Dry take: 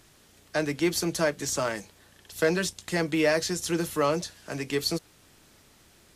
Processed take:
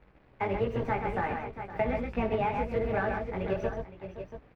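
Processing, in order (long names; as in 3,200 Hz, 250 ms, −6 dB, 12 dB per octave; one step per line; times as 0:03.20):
sub-octave generator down 2 octaves, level −3 dB
flat-topped bell 5,100 Hz −14 dB 2.5 octaves
wrong playback speed 33 rpm record played at 45 rpm
multi-voice chorus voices 6, 0.96 Hz, delay 19 ms, depth 4 ms
in parallel at −6.5 dB: log-companded quantiser 4 bits
on the sum: high-frequency loss of the air 340 metres
on a send: multi-tap delay 65/129/515/681 ms −13/−6.5/−15/−13 dB
on the sum: downward compressor, threshold −25 dBFS, peak gain reduction 7 dB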